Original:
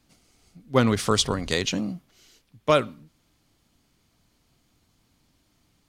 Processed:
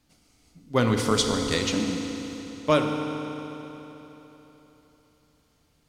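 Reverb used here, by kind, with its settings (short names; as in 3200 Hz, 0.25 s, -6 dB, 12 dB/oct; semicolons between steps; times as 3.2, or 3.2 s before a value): FDN reverb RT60 3.7 s, high-frequency decay 0.9×, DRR 2.5 dB; gain -2.5 dB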